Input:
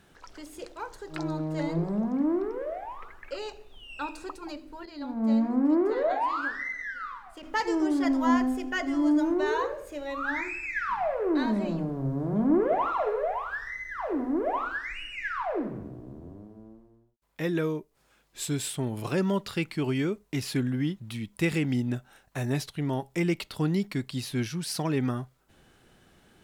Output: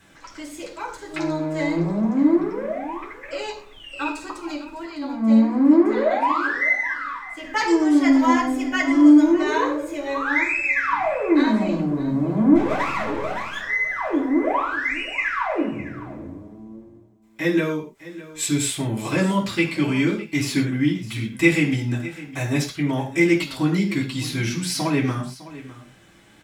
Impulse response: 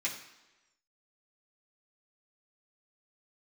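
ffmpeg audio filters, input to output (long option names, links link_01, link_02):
-filter_complex "[0:a]asplit=3[link_01][link_02][link_03];[link_01]afade=type=out:start_time=12.54:duration=0.02[link_04];[link_02]aeval=exprs='max(val(0),0)':channel_layout=same,afade=type=in:start_time=12.54:duration=0.02,afade=type=out:start_time=13.6:duration=0.02[link_05];[link_03]afade=type=in:start_time=13.6:duration=0.02[link_06];[link_04][link_05][link_06]amix=inputs=3:normalize=0,aecho=1:1:606:0.141[link_07];[1:a]atrim=start_sample=2205,afade=type=out:start_time=0.18:duration=0.01,atrim=end_sample=8379[link_08];[link_07][link_08]afir=irnorm=-1:irlink=0,volume=5dB"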